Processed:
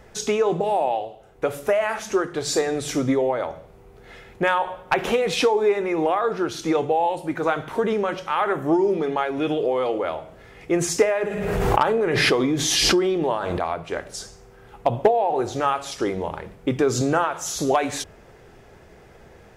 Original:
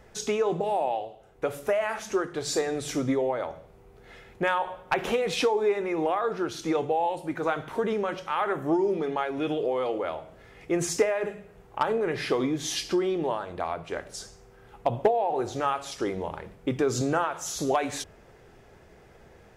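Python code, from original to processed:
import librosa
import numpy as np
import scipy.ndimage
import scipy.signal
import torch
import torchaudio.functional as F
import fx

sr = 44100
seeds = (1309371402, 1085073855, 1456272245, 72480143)

y = fx.pre_swell(x, sr, db_per_s=23.0, at=(11.28, 13.58), fade=0.02)
y = y * librosa.db_to_amplitude(5.0)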